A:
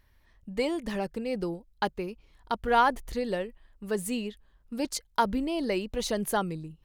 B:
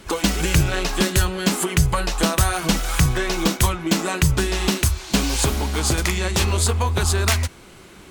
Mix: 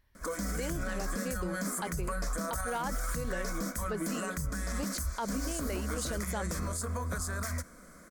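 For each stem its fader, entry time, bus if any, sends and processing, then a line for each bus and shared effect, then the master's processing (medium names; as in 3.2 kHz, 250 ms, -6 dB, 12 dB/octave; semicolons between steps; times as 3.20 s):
-5.5 dB, 0.00 s, no send, none
-4.5 dB, 0.15 s, no send, peaking EQ 3.8 kHz -10 dB 0.49 oct; peak limiter -15.5 dBFS, peak gain reduction 8.5 dB; static phaser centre 560 Hz, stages 8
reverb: none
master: peak limiter -25 dBFS, peak gain reduction 10 dB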